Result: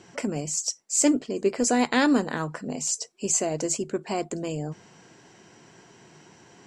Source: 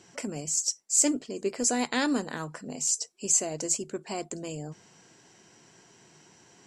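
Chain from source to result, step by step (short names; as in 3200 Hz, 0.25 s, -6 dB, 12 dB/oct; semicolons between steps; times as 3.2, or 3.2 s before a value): high shelf 4500 Hz -10 dB; gain +6.5 dB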